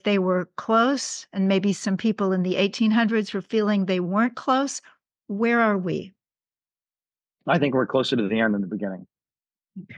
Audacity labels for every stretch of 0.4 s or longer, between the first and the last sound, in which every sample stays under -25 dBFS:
4.770000	5.300000	silence
6.020000	7.480000	silence